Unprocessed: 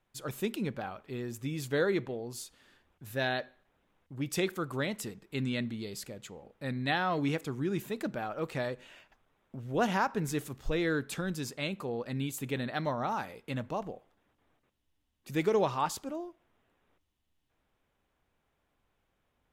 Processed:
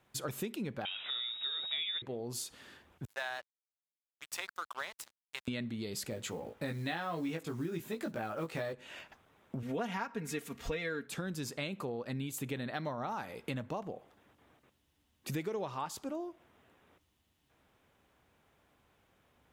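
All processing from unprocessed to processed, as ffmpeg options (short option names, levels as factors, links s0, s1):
-filter_complex "[0:a]asettb=1/sr,asplit=3[s0][s1][s2];[s0]atrim=end=0.854[s3];[s1]atrim=start=0.85:end=2.02,asetpts=PTS-STARTPTS,afade=t=in:d=0.004:c=qsin,afade=t=out:st=1.166:d=0.004:c=qsin,aeval=exprs='val(0)+0.5*0.00631*sgn(val(0))':c=same,lowpass=f=3300:t=q:w=0.5098,lowpass=f=3300:t=q:w=0.6013,lowpass=f=3300:t=q:w=0.9,lowpass=f=3300:t=q:w=2.563,afreqshift=-3900[s4];[s2]atrim=start=2.016[s5];[s3][s4]acrossfade=d=0.004:c1=hsin:c2=qsin[s6];[s6][s5]acrossfade=d=0.004:c1=qsin:c2=hsin,asettb=1/sr,asplit=3[s7][s8][s9];[s7]atrim=end=3.054[s10];[s8]atrim=start=3.05:end=5.48,asetpts=PTS-STARTPTS,afade=t=in:d=0.004:c=qsin,afade=t=out:st=2.426:d=0.004:c=qsin,highpass=f=870:w=0.5412,highpass=f=870:w=1.3066,tiltshelf=f=1200:g=7,aeval=exprs='sgn(val(0))*max(abs(val(0))-0.00398,0)':c=same[s11];[s9]atrim=start=5.476[s12];[s10][s11]acrossfade=d=0.004:c1=hsin:c2=qsin[s13];[s13][s12]acrossfade=d=0.004:c1=qsin:c2=hsin,asettb=1/sr,asplit=3[s14][s15][s16];[s14]atrim=end=6.104[s17];[s15]atrim=start=6.1:end=8.73,asetpts=PTS-STARTPTS,afade=t=in:d=0.004:c=qsin,afade=t=out:st=2.626:d=0.004:c=qsin,acrusher=bits=7:mode=log:mix=0:aa=0.000001,asplit=2[s18][s19];[s19]adelay=18,volume=0.708[s20];[s18][s20]amix=inputs=2:normalize=0,atrim=end_sample=115983[s21];[s16]atrim=start=8.726[s22];[s17][s21]acrossfade=d=0.004:c1=hsin:c2=qsin[s23];[s23][s22]acrossfade=d=0.004:c1=qsin:c2=hsin,asettb=1/sr,asplit=3[s24][s25][s26];[s24]atrim=end=9.624[s27];[s25]atrim=start=9.62:end=11.07,asetpts=PTS-STARTPTS,afade=t=in:d=0.004:c=qsin,afade=t=out:st=1.446:d=0.004:c=qsin,equalizer=f=2200:w=1.6:g=6.5,aecho=1:1:4.3:0.79,atrim=end_sample=63945[s28];[s26]atrim=start=11.066[s29];[s27][s28]acrossfade=d=0.004:c1=hsin:c2=qsin[s30];[s30][s29]acrossfade=d=0.004:c1=qsin:c2=hsin,highpass=61,acompressor=threshold=0.00631:ratio=6,volume=2.51"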